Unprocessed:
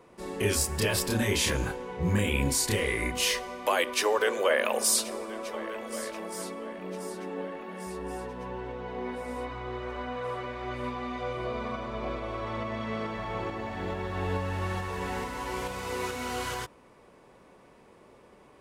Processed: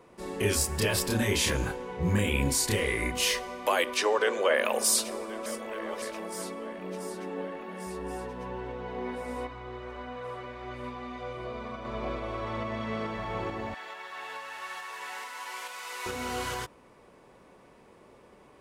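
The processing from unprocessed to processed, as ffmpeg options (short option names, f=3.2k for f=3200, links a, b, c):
-filter_complex "[0:a]asettb=1/sr,asplit=3[a][b][c];[a]atrim=end=3.974[d];[b]atrim=start=3.97:end=4.54,asetpts=PTS-STARTPTS,afade=t=in:d=0.004:c=qsin,afade=t=out:st=0.566:d=0.004:c=qsin,highpass=100,lowpass=7.4k[e];[c]atrim=start=4.536[f];[d][e]acrossfade=d=0.004:c1=hsin:c2=qsin[g];[g][f]acrossfade=d=0.004:c1=qsin:c2=hsin,asettb=1/sr,asplit=3[h][i][j];[h]atrim=end=13.744[k];[i]atrim=start=13.74:end=16.06,asetpts=PTS-STARTPTS,afade=t=in:d=0.004:c=qsin,afade=t=out:st=2.316:d=0.004:c=qsin,highpass=1.1k[l];[j]atrim=start=16.056[m];[k][l]acrossfade=d=0.004:c1=hsin:c2=qsin[n];[n][m]acrossfade=d=0.004:c1=qsin:c2=hsin,asplit=5[o][p][q][r][s];[o]atrim=end=5.462[t];[p]atrim=start=5.458:end=6.022,asetpts=PTS-STARTPTS,areverse[u];[q]atrim=start=6.018:end=9.472[v];[r]atrim=start=9.468:end=11.852,asetpts=PTS-STARTPTS,volume=-4.5dB[w];[s]atrim=start=11.848[x];[t][u]acrossfade=d=0.004:c1=hsin:c2=hsin[y];[y][v]acrossfade=d=0.004:c1=hsin:c2=hsin[z];[z][w]acrossfade=d=0.004:c1=hsin:c2=hsin[aa];[aa][x]acrossfade=d=0.004:c1=hsin:c2=hsin"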